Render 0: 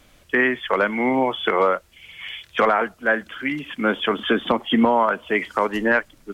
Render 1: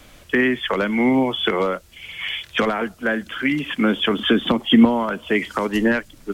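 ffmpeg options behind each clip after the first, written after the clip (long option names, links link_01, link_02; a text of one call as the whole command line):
ffmpeg -i in.wav -filter_complex "[0:a]acrossover=split=330|3000[link_01][link_02][link_03];[link_02]acompressor=threshold=-30dB:ratio=6[link_04];[link_01][link_04][link_03]amix=inputs=3:normalize=0,volume=7dB" out.wav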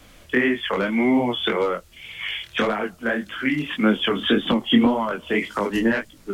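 ffmpeg -i in.wav -af "flanger=delay=18.5:depth=7.7:speed=1.8,volume=1dB" out.wav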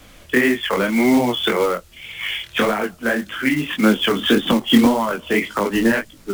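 ffmpeg -i in.wav -af "acrusher=bits=4:mode=log:mix=0:aa=0.000001,volume=3.5dB" out.wav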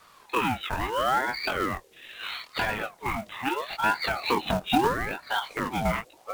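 ffmpeg -i in.wav -af "aeval=exprs='val(0)*sin(2*PI*810*n/s+810*0.5/0.76*sin(2*PI*0.76*n/s))':channel_layout=same,volume=-7dB" out.wav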